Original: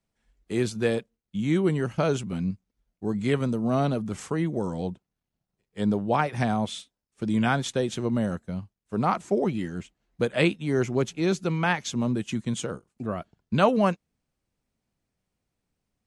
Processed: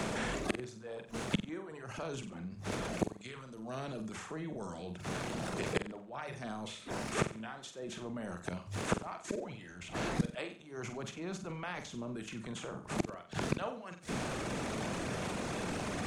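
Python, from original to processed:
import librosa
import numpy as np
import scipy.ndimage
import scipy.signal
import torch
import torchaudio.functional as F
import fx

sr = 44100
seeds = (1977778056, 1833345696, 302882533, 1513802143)

p1 = fx.bin_compress(x, sr, power=0.6)
p2 = fx.hum_notches(p1, sr, base_hz=50, count=3)
p3 = fx.gate_flip(p2, sr, shuts_db=-23.0, range_db=-41)
p4 = fx.transient(p3, sr, attack_db=-5, sustain_db=8)
p5 = fx.dereverb_blind(p4, sr, rt60_s=1.3)
p6 = p5 + fx.room_flutter(p5, sr, wall_m=7.8, rt60_s=0.34, dry=0)
p7 = fx.band_squash(p6, sr, depth_pct=70)
y = p7 * 10.0 ** (17.5 / 20.0)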